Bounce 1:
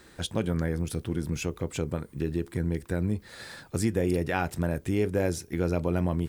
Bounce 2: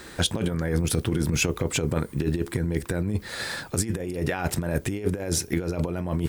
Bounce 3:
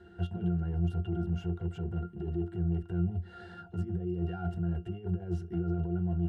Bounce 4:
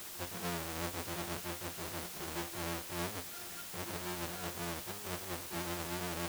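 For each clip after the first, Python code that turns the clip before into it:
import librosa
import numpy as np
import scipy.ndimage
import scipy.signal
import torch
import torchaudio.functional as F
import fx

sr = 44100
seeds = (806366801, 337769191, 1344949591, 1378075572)

y1 = fx.low_shelf(x, sr, hz=350.0, db=-3.0)
y1 = fx.over_compress(y1, sr, threshold_db=-32.0, ratio=-0.5)
y1 = y1 * librosa.db_to_amplitude(8.0)
y2 = np.clip(y1, -10.0 ** (-23.5 / 20.0), 10.0 ** (-23.5 / 20.0))
y2 = fx.octave_resonator(y2, sr, note='F', decay_s=0.15)
y2 = y2 * librosa.db_to_amplitude(1.5)
y3 = fx.halfwave_hold(y2, sr)
y3 = fx.highpass(y3, sr, hz=480.0, slope=6)
y3 = fx.dmg_noise_colour(y3, sr, seeds[0], colour='white', level_db=-41.0)
y3 = y3 * librosa.db_to_amplitude(-5.5)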